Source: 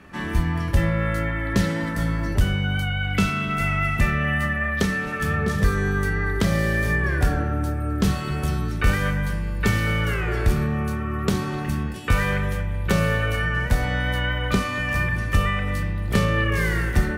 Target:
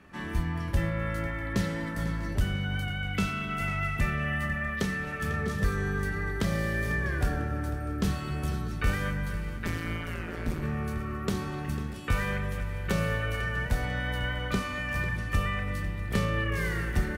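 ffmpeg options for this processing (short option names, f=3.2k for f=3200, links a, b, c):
-filter_complex "[0:a]asplit=2[a][b];[b]aecho=0:1:497|994|1491|1988:0.188|0.0716|0.0272|0.0103[c];[a][c]amix=inputs=2:normalize=0,asplit=3[d][e][f];[d]afade=t=out:st=9.56:d=0.02[g];[e]tremolo=f=170:d=0.974,afade=t=in:st=9.56:d=0.02,afade=t=out:st=10.62:d=0.02[h];[f]afade=t=in:st=10.62:d=0.02[i];[g][h][i]amix=inputs=3:normalize=0,asplit=2[j][k];[k]aecho=0:1:646:0.106[l];[j][l]amix=inputs=2:normalize=0,volume=-7.5dB"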